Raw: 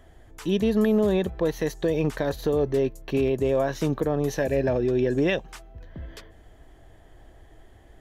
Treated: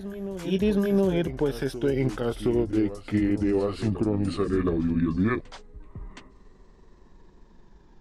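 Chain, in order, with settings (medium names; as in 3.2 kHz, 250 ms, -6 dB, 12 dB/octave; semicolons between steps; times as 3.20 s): pitch bend over the whole clip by -11.5 st starting unshifted; reverse echo 718 ms -12 dB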